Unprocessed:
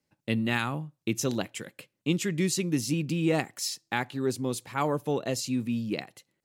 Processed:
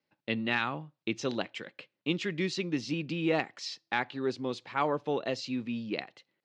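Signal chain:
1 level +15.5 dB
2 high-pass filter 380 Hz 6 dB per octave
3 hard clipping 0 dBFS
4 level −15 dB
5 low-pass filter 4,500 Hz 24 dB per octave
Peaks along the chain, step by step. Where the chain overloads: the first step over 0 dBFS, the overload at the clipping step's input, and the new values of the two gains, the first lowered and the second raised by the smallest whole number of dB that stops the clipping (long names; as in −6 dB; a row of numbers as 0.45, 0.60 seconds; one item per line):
+4.0, +4.0, 0.0, −15.0, −14.0 dBFS
step 1, 4.0 dB
step 1 +11.5 dB, step 4 −11 dB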